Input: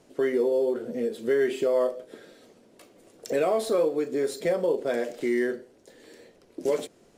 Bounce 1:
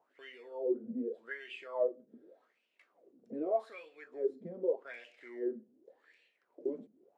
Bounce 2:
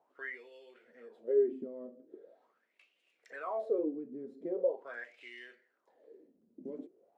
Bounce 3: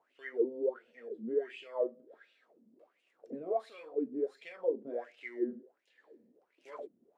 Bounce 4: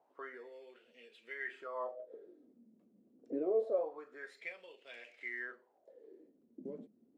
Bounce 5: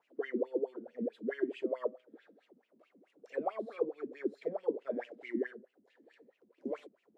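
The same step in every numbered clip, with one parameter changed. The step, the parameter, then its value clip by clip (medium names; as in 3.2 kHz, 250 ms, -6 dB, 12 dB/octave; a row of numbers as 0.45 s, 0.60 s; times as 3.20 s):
wah-wah, rate: 0.84 Hz, 0.42 Hz, 1.4 Hz, 0.26 Hz, 4.6 Hz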